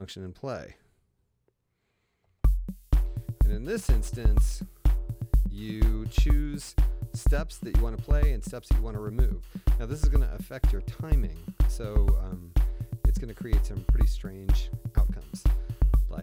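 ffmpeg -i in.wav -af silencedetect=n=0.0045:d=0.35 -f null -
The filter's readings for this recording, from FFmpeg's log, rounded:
silence_start: 0.73
silence_end: 2.44 | silence_duration: 1.72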